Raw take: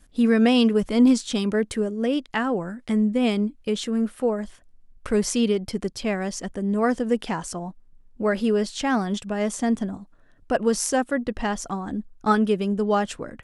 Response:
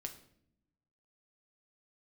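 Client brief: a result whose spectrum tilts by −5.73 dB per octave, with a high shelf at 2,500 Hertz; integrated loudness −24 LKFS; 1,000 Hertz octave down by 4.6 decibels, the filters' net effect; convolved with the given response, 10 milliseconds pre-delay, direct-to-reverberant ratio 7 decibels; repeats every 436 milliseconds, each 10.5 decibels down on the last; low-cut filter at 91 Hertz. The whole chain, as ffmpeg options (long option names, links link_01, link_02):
-filter_complex "[0:a]highpass=91,equalizer=frequency=1000:width_type=o:gain=-5.5,highshelf=frequency=2500:gain=-6,aecho=1:1:436|872|1308:0.299|0.0896|0.0269,asplit=2[link_01][link_02];[1:a]atrim=start_sample=2205,adelay=10[link_03];[link_02][link_03]afir=irnorm=-1:irlink=0,volume=-4dB[link_04];[link_01][link_04]amix=inputs=2:normalize=0"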